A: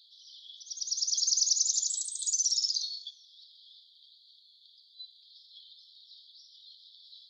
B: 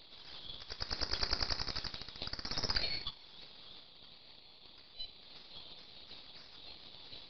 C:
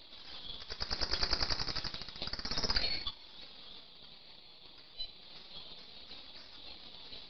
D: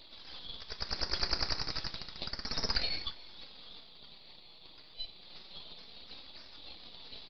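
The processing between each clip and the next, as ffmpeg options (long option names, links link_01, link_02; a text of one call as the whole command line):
ffmpeg -i in.wav -af "acompressor=threshold=-35dB:ratio=1.5,aresample=11025,aeval=exprs='max(val(0),0)':channel_layout=same,aresample=44100,volume=6dB" out.wav
ffmpeg -i in.wav -af "flanger=delay=3.2:depth=3.4:regen=-43:speed=0.31:shape=triangular,volume=6dB" out.wav
ffmpeg -i in.wav -filter_complex "[0:a]asplit=2[link_01][link_02];[link_02]adelay=344,volume=-20dB,highshelf=frequency=4000:gain=-7.74[link_03];[link_01][link_03]amix=inputs=2:normalize=0" out.wav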